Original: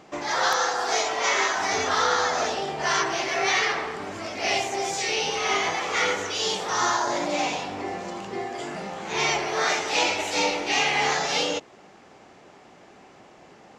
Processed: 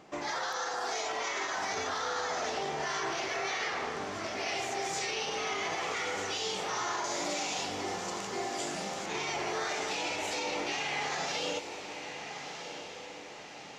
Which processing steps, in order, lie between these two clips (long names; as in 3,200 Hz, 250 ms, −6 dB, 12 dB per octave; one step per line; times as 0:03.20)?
0:07.04–0:09.06: bass and treble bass −1 dB, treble +12 dB
brickwall limiter −20.5 dBFS, peak gain reduction 11 dB
feedback delay with all-pass diffusion 1,303 ms, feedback 51%, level −8.5 dB
level −5 dB